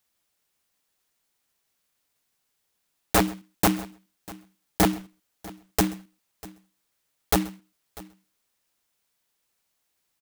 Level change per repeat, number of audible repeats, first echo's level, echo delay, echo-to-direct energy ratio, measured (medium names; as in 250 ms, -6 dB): no regular repeats, 2, -23.0 dB, 131 ms, -18.5 dB